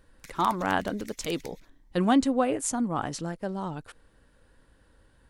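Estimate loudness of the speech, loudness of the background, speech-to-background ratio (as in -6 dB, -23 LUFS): -28.5 LUFS, -47.5 LUFS, 19.0 dB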